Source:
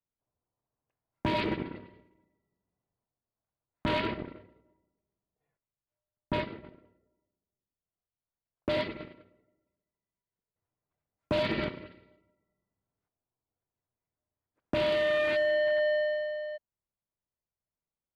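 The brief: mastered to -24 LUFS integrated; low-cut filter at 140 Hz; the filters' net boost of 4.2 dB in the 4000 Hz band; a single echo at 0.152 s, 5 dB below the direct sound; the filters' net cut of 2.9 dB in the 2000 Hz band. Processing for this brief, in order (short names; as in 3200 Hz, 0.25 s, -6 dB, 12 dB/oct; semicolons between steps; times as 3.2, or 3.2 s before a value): HPF 140 Hz; bell 2000 Hz -5 dB; bell 4000 Hz +7.5 dB; echo 0.152 s -5 dB; gain +5 dB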